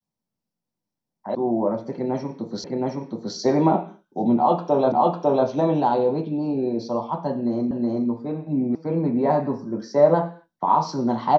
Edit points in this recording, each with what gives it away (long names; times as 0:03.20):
0:01.35: cut off before it has died away
0:02.64: the same again, the last 0.72 s
0:04.92: the same again, the last 0.55 s
0:07.71: the same again, the last 0.37 s
0:08.75: cut off before it has died away